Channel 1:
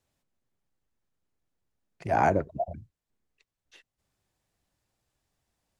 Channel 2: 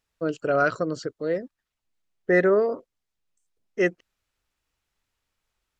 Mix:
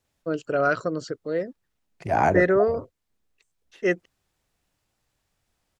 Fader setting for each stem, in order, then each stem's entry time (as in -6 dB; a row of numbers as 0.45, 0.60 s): +2.5, -0.5 dB; 0.00, 0.05 s